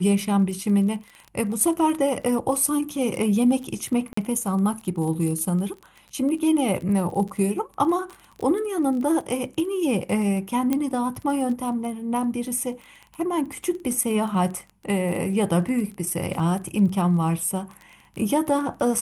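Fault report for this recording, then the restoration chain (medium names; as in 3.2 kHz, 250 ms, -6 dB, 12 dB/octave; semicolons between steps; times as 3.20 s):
crackle 21 per s -31 dBFS
4.13–4.17 s: dropout 44 ms
10.73 s: pop -10 dBFS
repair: de-click; interpolate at 4.13 s, 44 ms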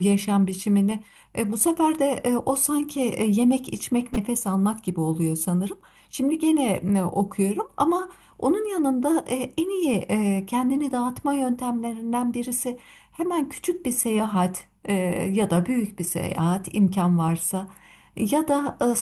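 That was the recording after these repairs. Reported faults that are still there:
nothing left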